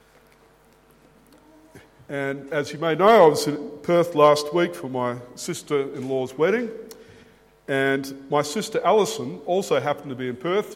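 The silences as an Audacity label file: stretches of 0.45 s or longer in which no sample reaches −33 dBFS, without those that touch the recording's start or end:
6.920000	7.680000	silence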